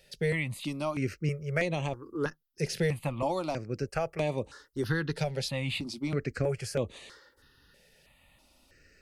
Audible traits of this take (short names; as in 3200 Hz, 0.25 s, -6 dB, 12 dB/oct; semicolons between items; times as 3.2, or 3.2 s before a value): notches that jump at a steady rate 3.1 Hz 300–5200 Hz